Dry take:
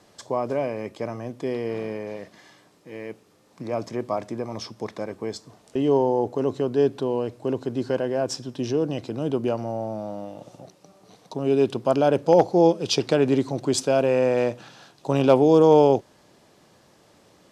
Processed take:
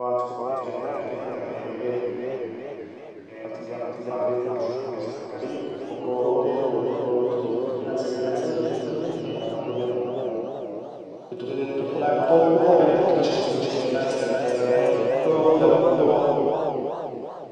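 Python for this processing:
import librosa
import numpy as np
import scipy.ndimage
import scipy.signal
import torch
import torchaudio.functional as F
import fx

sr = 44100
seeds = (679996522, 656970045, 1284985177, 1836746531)

p1 = fx.block_reorder(x, sr, ms=164.0, group=3)
p2 = fx.highpass(p1, sr, hz=220.0, slope=6)
p3 = fx.high_shelf(p2, sr, hz=4400.0, db=-11.5)
p4 = fx.level_steps(p3, sr, step_db=10)
p5 = p3 + F.gain(torch.from_numpy(p4), -0.5).numpy()
p6 = scipy.signal.sosfilt(scipy.signal.bessel(2, 7500.0, 'lowpass', norm='mag', fs=sr, output='sos'), p5)
p7 = fx.resonator_bank(p6, sr, root=47, chord='sus4', decay_s=0.21)
p8 = fx.rev_freeverb(p7, sr, rt60_s=1.2, hf_ratio=0.9, predelay_ms=30, drr_db=-4.0)
p9 = fx.echo_warbled(p8, sr, ms=379, feedback_pct=48, rate_hz=2.8, cents=148, wet_db=-3.5)
y = F.gain(torch.from_numpy(p9), 2.5).numpy()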